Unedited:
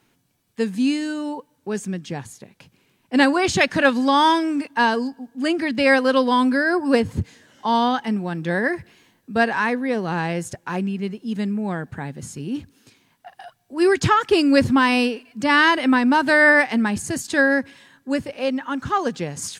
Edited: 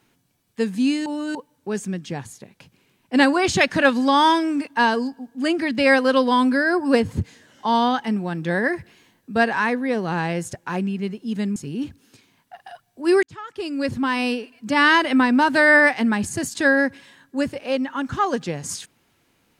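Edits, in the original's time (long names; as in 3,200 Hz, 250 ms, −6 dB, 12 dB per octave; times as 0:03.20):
0:01.06–0:01.35: reverse
0:11.56–0:12.29: remove
0:13.96–0:15.59: fade in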